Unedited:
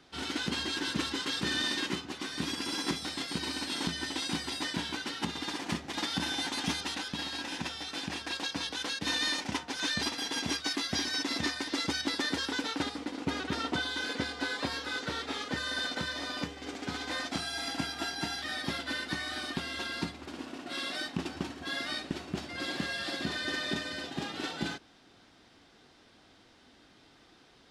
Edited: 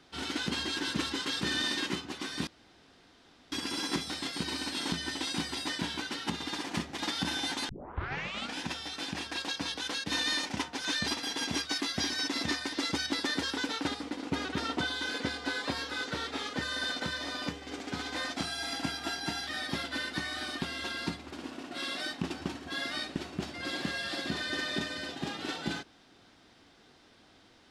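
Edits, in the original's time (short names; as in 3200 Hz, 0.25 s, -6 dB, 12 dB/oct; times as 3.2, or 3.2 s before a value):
2.47 insert room tone 1.05 s
6.64 tape start 0.90 s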